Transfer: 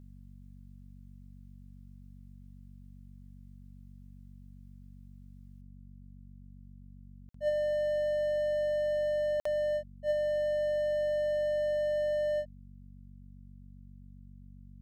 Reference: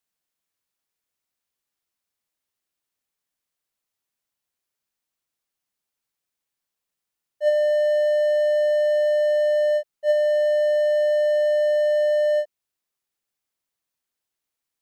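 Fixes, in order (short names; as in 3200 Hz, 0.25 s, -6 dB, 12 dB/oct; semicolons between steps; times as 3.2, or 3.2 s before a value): de-hum 47.5 Hz, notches 5; interpolate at 7.29/9.4, 54 ms; gain correction +10.5 dB, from 5.61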